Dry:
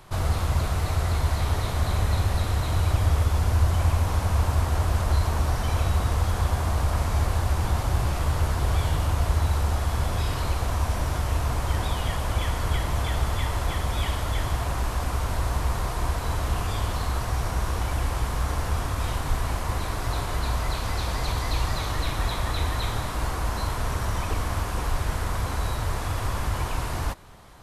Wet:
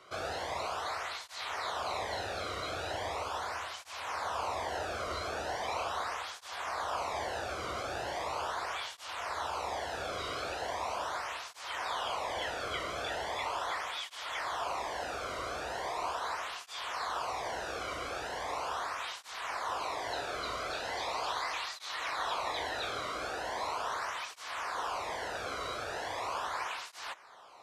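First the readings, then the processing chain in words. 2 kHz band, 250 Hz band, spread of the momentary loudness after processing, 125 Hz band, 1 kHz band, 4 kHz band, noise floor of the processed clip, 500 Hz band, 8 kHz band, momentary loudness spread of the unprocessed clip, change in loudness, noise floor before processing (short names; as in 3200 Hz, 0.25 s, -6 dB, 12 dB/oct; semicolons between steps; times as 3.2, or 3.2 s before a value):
-3.0 dB, -15.5 dB, 4 LU, -29.5 dB, -3.5 dB, -4.0 dB, -49 dBFS, -4.0 dB, -9.0 dB, 5 LU, -10.0 dB, -30 dBFS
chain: three-band isolator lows -15 dB, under 390 Hz, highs -18 dB, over 6900 Hz; tape flanging out of phase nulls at 0.39 Hz, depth 1.2 ms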